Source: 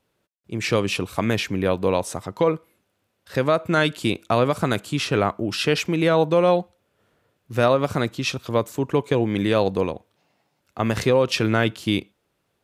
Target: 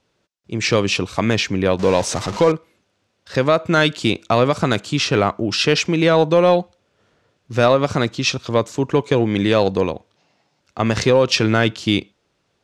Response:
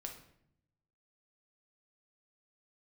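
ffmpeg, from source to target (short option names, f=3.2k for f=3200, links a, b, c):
-filter_complex "[0:a]asettb=1/sr,asplit=3[a][b][c];[a]atrim=end=1.794[d];[b]atrim=start=1.79:end=2.52,asetpts=PTS-STARTPTS,afade=t=in:d=0.004:c=qsin,afade=t=out:st=0.726:d=0.004:c=qsin,aeval=exprs='val(0)+0.5*0.0376*sgn(val(0))':c=same[e];[c]atrim=start=2.516[f];[d][e]acrossfade=d=0.004:c1=hsin:c2=qsin[g];[g][f]acrossfade=d=0.004:c1=qsin:c2=hsin,lowpass=f=6k:t=q:w=1.6,asplit=2[h][i];[i]volume=12.5dB,asoftclip=hard,volume=-12.5dB,volume=-7.5dB[j];[h][j]amix=inputs=2:normalize=0,volume=1dB"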